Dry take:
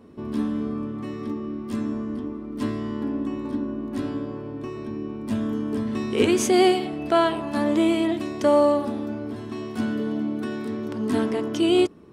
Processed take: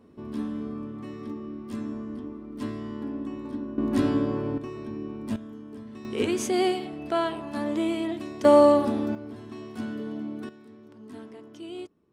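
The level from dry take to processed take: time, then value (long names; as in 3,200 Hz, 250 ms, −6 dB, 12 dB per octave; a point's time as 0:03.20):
−6 dB
from 0:03.78 +5 dB
from 0:04.58 −3.5 dB
from 0:05.36 −15 dB
from 0:06.05 −6.5 dB
from 0:08.45 +2 dB
from 0:09.15 −7.5 dB
from 0:10.49 −19.5 dB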